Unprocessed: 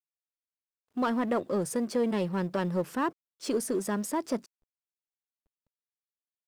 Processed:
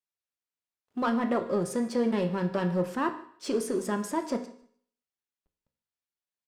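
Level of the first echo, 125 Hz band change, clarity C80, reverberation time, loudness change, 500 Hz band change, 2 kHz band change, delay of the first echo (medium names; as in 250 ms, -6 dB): -22.5 dB, +2.0 dB, 13.5 dB, 0.60 s, +1.0 dB, +1.0 dB, +1.0 dB, 152 ms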